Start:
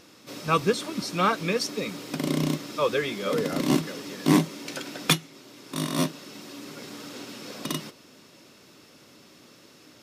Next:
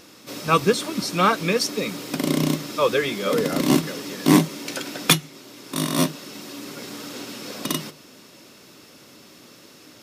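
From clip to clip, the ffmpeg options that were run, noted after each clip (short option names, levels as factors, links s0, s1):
-af "highshelf=f=10000:g=6,bandreject=f=50:t=h:w=6,bandreject=f=100:t=h:w=6,bandreject=f=150:t=h:w=6,volume=1.68"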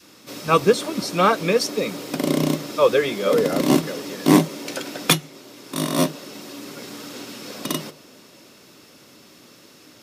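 -af "adynamicequalizer=threshold=0.0178:dfrequency=560:dqfactor=1:tfrequency=560:tqfactor=1:attack=5:release=100:ratio=0.375:range=3:mode=boostabove:tftype=bell,volume=0.891"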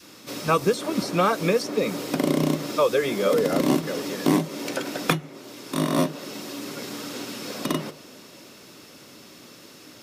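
-filter_complex "[0:a]acrossover=split=2300|4900[s0][s1][s2];[s0]acompressor=threshold=0.1:ratio=4[s3];[s1]acompressor=threshold=0.00708:ratio=4[s4];[s2]acompressor=threshold=0.01:ratio=4[s5];[s3][s4][s5]amix=inputs=3:normalize=0,volume=1.26"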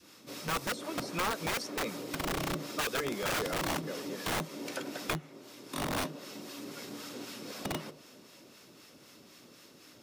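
-filter_complex "[0:a]acrossover=split=770[s0][s1];[s0]aeval=exprs='val(0)*(1-0.5/2+0.5/2*cos(2*PI*3.9*n/s))':c=same[s2];[s1]aeval=exprs='val(0)*(1-0.5/2-0.5/2*cos(2*PI*3.9*n/s))':c=same[s3];[s2][s3]amix=inputs=2:normalize=0,acrossover=split=990[s4][s5];[s4]aeval=exprs='(mod(10.6*val(0)+1,2)-1)/10.6':c=same[s6];[s6][s5]amix=inputs=2:normalize=0,volume=0.447"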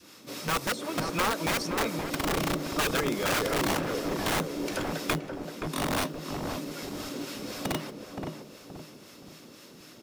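-filter_complex "[0:a]acrusher=bits=6:mode=log:mix=0:aa=0.000001,asplit=2[s0][s1];[s1]adelay=523,lowpass=f=860:p=1,volume=0.708,asplit=2[s2][s3];[s3]adelay=523,lowpass=f=860:p=1,volume=0.44,asplit=2[s4][s5];[s5]adelay=523,lowpass=f=860:p=1,volume=0.44,asplit=2[s6][s7];[s7]adelay=523,lowpass=f=860:p=1,volume=0.44,asplit=2[s8][s9];[s9]adelay=523,lowpass=f=860:p=1,volume=0.44,asplit=2[s10][s11];[s11]adelay=523,lowpass=f=860:p=1,volume=0.44[s12];[s0][s2][s4][s6][s8][s10][s12]amix=inputs=7:normalize=0,volume=1.68"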